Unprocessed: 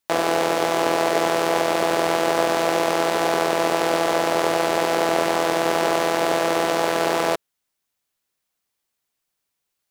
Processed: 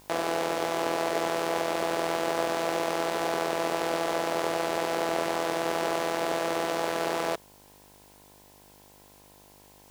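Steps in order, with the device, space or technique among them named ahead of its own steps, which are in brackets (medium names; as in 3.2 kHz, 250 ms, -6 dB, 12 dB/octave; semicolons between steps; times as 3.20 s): video cassette with head-switching buzz (mains buzz 50 Hz, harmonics 21, -50 dBFS -1 dB/octave; white noise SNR 28 dB); trim -8 dB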